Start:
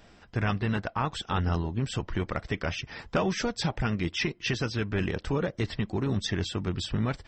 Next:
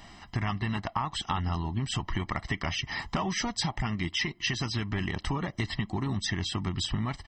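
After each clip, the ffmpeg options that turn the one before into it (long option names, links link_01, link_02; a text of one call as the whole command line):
ffmpeg -i in.wav -af "lowshelf=frequency=310:gain=-6,aecho=1:1:1:0.77,acompressor=threshold=-33dB:ratio=6,volume=6dB" out.wav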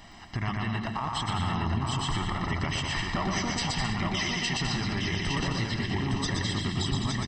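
ffmpeg -i in.wav -filter_complex "[0:a]asplit=2[link_01][link_02];[link_02]aecho=0:1:120|204|262.8|304|332.8:0.631|0.398|0.251|0.158|0.1[link_03];[link_01][link_03]amix=inputs=2:normalize=0,alimiter=limit=-20.5dB:level=0:latency=1,asplit=2[link_04][link_05];[link_05]aecho=0:1:862|1724|2586|3448:0.668|0.187|0.0524|0.0147[link_06];[link_04][link_06]amix=inputs=2:normalize=0" out.wav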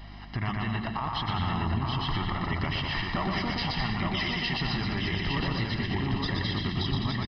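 ffmpeg -i in.wav -af "aeval=exprs='val(0)+0.00631*(sin(2*PI*50*n/s)+sin(2*PI*2*50*n/s)/2+sin(2*PI*3*50*n/s)/3+sin(2*PI*4*50*n/s)/4+sin(2*PI*5*50*n/s)/5)':channel_layout=same,aresample=11025,aresample=44100" out.wav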